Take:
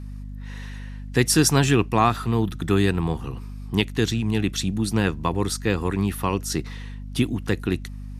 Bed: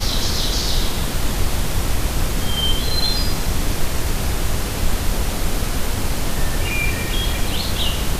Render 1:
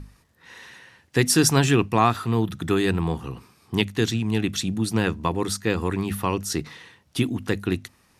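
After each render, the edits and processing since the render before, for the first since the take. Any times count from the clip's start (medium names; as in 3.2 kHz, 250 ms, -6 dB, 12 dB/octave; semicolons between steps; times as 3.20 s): hum notches 50/100/150/200/250 Hz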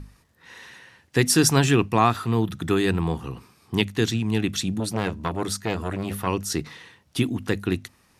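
4.80–6.27 s: transformer saturation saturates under 950 Hz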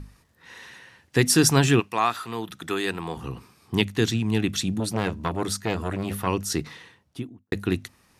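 1.79–3.16 s: high-pass 1.1 kHz -> 530 Hz 6 dB/octave; 6.70–7.52 s: studio fade out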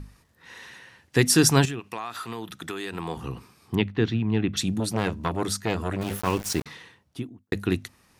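1.65–2.93 s: compression 12:1, threshold -28 dBFS; 3.75–4.57 s: distance through air 320 m; 6.01–6.66 s: small samples zeroed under -31 dBFS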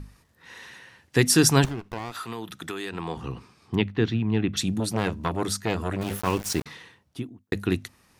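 1.64–2.12 s: sliding maximum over 17 samples; 2.89–3.80 s: low-pass 7 kHz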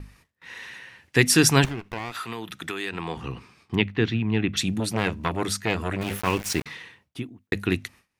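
gate with hold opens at -47 dBFS; peaking EQ 2.3 kHz +7 dB 1 oct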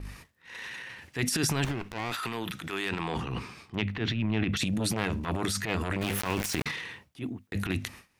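compression 12:1, threshold -23 dBFS, peak gain reduction 12 dB; transient shaper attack -12 dB, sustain +9 dB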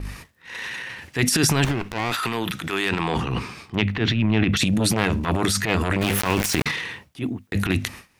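trim +8.5 dB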